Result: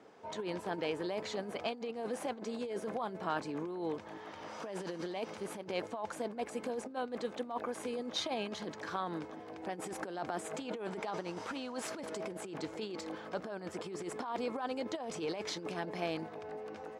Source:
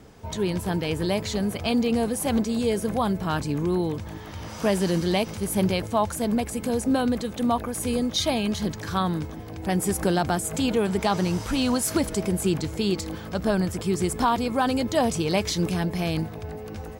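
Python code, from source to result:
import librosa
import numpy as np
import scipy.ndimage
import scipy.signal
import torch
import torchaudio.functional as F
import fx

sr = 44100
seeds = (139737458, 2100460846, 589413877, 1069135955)

y = fx.tracing_dist(x, sr, depth_ms=0.022)
y = fx.high_shelf(y, sr, hz=2800.0, db=-11.5)
y = fx.over_compress(y, sr, threshold_db=-26.0, ratio=-0.5)
y = fx.bandpass_edges(y, sr, low_hz=400.0, high_hz=7900.0)
y = F.gain(torch.from_numpy(y), -5.5).numpy()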